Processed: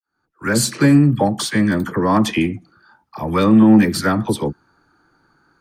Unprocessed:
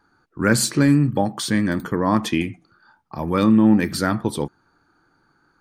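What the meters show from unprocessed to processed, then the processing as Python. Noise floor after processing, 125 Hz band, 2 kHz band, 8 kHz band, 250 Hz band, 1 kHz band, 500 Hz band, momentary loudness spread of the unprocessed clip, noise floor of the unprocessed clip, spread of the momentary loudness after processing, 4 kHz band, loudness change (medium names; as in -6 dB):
-72 dBFS, +3.5 dB, +2.5 dB, +2.0 dB, +4.0 dB, +3.5 dB, +3.5 dB, 14 LU, -64 dBFS, 12 LU, +2.5 dB, +3.5 dB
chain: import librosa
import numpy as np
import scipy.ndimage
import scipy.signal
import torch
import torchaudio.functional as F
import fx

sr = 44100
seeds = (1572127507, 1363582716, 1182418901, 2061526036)

y = fx.fade_in_head(x, sr, length_s=0.8)
y = fx.dispersion(y, sr, late='lows', ms=51.0, hz=790.0)
y = fx.cheby_harmonics(y, sr, harmonics=(3,), levels_db=(-25,), full_scale_db=-6.0)
y = y * librosa.db_to_amplitude(5.0)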